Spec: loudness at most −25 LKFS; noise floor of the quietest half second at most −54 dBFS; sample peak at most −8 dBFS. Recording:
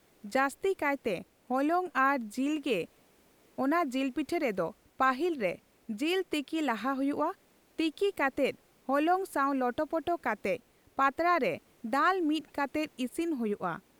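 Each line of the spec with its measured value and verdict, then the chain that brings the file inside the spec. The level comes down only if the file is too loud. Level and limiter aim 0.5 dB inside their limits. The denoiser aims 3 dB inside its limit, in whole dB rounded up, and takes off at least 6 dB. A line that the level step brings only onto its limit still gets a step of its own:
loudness −31.0 LKFS: in spec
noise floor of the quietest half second −64 dBFS: in spec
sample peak −14.0 dBFS: in spec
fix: no processing needed

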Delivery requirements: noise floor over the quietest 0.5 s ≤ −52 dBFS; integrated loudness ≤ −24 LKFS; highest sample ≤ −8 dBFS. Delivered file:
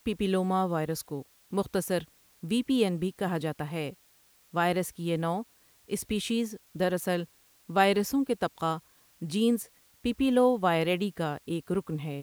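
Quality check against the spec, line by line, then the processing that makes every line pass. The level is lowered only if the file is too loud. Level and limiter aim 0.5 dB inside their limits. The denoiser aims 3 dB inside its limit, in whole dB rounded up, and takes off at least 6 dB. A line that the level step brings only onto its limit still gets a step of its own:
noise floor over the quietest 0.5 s −63 dBFS: in spec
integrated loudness −29.5 LKFS: in spec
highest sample −9.5 dBFS: in spec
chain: no processing needed

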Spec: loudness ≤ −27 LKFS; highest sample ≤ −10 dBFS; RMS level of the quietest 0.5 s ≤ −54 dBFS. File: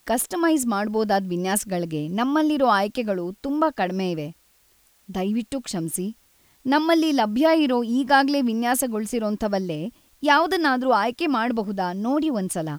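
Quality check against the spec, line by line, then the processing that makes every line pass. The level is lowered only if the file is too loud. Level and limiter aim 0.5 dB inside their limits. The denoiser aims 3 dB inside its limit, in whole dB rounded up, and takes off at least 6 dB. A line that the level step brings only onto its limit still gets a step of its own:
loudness −22.5 LKFS: out of spec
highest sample −6.0 dBFS: out of spec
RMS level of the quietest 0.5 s −60 dBFS: in spec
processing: level −5 dB

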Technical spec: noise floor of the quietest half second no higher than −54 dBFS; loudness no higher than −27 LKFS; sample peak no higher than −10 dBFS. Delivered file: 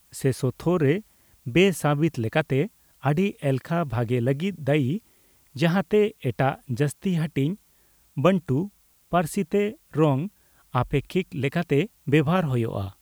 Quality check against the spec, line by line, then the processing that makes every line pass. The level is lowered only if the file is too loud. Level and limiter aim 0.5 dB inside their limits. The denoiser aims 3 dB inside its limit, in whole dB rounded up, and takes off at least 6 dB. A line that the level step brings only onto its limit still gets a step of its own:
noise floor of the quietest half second −60 dBFS: in spec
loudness −24.5 LKFS: out of spec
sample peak −5.5 dBFS: out of spec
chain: level −3 dB
brickwall limiter −10.5 dBFS

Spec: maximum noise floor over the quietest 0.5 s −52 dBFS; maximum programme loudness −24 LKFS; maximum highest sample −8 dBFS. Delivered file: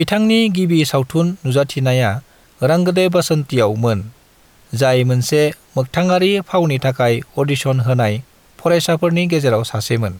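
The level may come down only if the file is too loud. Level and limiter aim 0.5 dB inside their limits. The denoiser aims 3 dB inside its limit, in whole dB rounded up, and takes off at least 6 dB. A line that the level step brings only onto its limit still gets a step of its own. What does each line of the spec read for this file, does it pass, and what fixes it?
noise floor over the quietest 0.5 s −50 dBFS: out of spec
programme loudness −16.0 LKFS: out of spec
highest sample −5.0 dBFS: out of spec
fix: level −8.5 dB

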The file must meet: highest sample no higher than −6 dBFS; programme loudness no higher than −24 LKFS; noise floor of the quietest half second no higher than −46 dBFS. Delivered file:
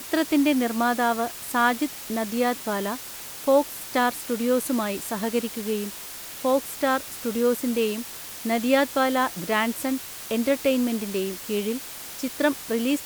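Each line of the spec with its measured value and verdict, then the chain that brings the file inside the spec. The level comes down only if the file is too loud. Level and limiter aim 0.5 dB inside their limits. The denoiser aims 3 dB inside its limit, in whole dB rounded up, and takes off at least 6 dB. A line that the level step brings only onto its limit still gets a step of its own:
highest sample −8.0 dBFS: in spec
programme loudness −25.0 LKFS: in spec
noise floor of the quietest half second −38 dBFS: out of spec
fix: broadband denoise 11 dB, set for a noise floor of −38 dBFS

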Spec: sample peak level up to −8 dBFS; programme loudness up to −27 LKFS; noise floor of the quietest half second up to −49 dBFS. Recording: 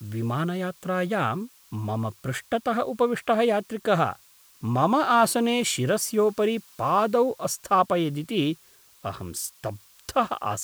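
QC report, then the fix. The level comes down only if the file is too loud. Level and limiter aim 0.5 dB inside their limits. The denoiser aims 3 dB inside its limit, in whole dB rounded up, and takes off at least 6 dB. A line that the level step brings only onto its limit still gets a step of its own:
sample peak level −7.5 dBFS: out of spec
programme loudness −25.0 LKFS: out of spec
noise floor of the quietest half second −55 dBFS: in spec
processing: level −2.5 dB

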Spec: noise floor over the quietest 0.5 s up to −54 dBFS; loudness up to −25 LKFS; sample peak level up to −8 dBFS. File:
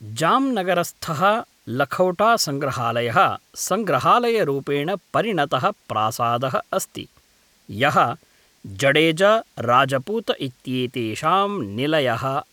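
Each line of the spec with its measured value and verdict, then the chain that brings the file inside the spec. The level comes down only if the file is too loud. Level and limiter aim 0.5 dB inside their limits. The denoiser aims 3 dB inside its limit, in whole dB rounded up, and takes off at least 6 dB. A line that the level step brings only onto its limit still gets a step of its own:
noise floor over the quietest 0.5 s −58 dBFS: in spec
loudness −20.5 LKFS: out of spec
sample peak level −5.0 dBFS: out of spec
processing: level −5 dB

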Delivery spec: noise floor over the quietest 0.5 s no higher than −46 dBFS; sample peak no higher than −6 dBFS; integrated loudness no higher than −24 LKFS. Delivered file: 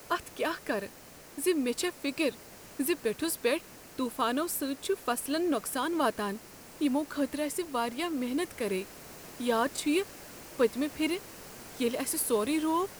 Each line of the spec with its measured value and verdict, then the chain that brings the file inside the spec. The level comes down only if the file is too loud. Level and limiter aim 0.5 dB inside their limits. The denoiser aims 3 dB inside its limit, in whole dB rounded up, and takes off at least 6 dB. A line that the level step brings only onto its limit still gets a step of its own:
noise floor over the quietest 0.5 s −51 dBFS: in spec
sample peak −14.5 dBFS: in spec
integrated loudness −31.0 LKFS: in spec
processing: no processing needed

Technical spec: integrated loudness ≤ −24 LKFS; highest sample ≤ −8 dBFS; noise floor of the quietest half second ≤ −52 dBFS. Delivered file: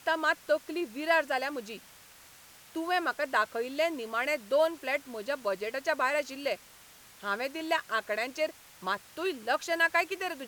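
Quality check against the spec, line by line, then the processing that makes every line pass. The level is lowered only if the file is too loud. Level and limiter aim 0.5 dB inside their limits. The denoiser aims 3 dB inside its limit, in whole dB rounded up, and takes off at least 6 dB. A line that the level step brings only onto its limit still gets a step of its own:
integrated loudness −31.0 LKFS: in spec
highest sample −12.5 dBFS: in spec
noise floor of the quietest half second −55 dBFS: in spec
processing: no processing needed

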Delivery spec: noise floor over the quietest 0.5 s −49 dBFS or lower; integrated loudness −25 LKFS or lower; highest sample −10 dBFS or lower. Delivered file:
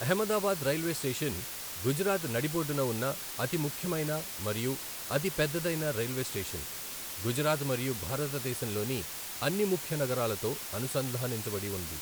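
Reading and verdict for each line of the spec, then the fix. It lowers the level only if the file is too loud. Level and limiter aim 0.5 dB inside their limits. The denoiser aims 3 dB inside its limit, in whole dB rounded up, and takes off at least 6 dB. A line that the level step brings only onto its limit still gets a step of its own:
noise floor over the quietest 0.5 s −40 dBFS: out of spec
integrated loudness −32.0 LKFS: in spec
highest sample −15.0 dBFS: in spec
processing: broadband denoise 12 dB, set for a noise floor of −40 dBFS

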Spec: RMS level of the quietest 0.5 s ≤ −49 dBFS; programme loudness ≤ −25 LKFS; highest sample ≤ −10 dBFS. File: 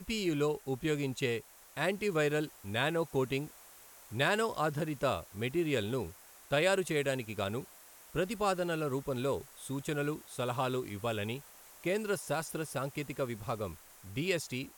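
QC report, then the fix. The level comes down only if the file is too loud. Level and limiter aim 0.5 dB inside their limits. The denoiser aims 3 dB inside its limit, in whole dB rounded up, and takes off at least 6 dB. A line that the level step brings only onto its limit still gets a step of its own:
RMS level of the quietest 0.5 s −56 dBFS: in spec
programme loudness −34.0 LKFS: in spec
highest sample −15.0 dBFS: in spec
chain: no processing needed

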